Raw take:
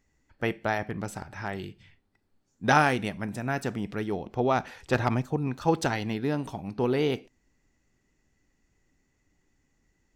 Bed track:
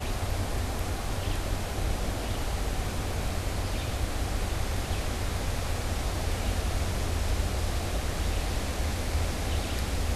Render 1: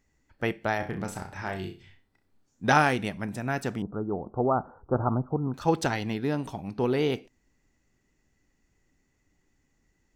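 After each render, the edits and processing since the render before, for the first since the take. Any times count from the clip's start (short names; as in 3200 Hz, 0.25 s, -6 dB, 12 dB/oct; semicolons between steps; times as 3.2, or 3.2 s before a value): 0.77–2.65 flutter echo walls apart 5.5 m, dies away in 0.31 s; 3.82–5.54 steep low-pass 1400 Hz 96 dB/oct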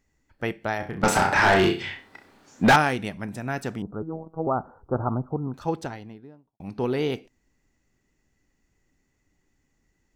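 1.03–2.76 overdrive pedal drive 34 dB, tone 2400 Hz, clips at -7.5 dBFS; 4.02–4.47 robotiser 161 Hz; 5.2–6.6 studio fade out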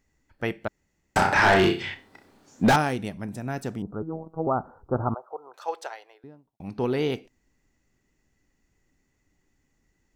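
0.68–1.16 room tone; 1.94–3.87 bell 1900 Hz -6 dB 2.4 oct; 5.14–6.24 inverse Chebyshev high-pass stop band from 250 Hz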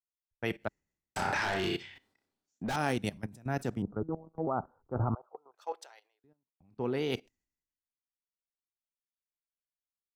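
level quantiser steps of 16 dB; three-band expander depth 100%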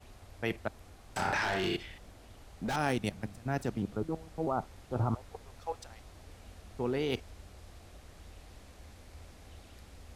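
add bed track -22.5 dB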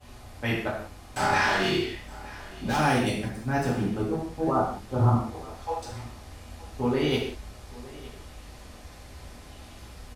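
echo 0.916 s -20 dB; non-linear reverb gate 0.22 s falling, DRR -7.5 dB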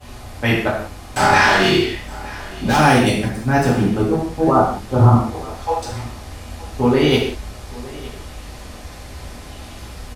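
gain +10.5 dB; limiter -1 dBFS, peak gain reduction 1.5 dB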